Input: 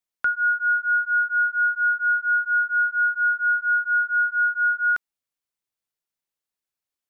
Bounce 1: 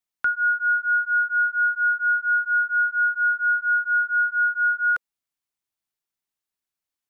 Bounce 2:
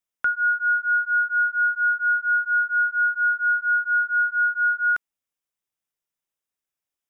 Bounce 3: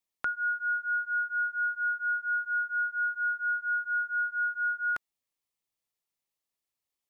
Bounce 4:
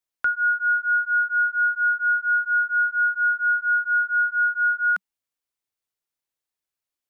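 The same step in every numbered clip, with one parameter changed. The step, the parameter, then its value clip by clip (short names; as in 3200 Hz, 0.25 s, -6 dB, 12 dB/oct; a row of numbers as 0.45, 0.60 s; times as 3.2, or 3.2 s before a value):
notch, frequency: 510, 4300, 1500, 190 Hz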